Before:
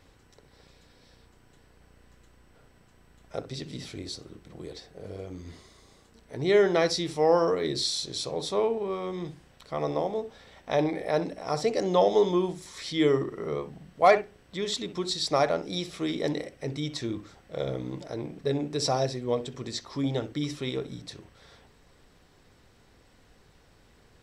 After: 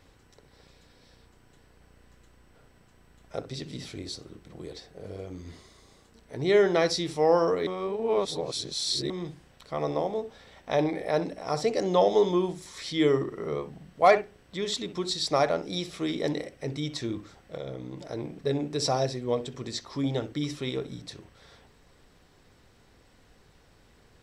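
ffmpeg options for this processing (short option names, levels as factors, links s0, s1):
-filter_complex "[0:a]asettb=1/sr,asplit=3[s0][s1][s2];[s0]atrim=end=17.554[s3];[s1]atrim=start=17.55:end=18.07,asetpts=PTS-STARTPTS,afade=t=in:d=0.004:c=qsin,afade=t=out:st=0.516:d=0.004:c=qsin,acompressor=threshold=0.0141:ratio=2:attack=3.2:release=140:knee=1:detection=peak[s4];[s2]atrim=start=18.066[s5];[s3][s4]acrossfade=d=0.004:c1=hsin:c2=qsin[s6];[s6][s5]acrossfade=d=0.004:c1=qsin:c2=hsin,asplit=3[s7][s8][s9];[s7]atrim=end=7.672[s10];[s8]atrim=start=7.668:end=9.102,asetpts=PTS-STARTPTS,areverse[s11];[s9]atrim=start=9.098[s12];[s10][s11]acrossfade=d=0.004:c1=hsin:c2=hsin[s13];[s13][s12]acrossfade=d=0.004:c1=hsin:c2=hsin"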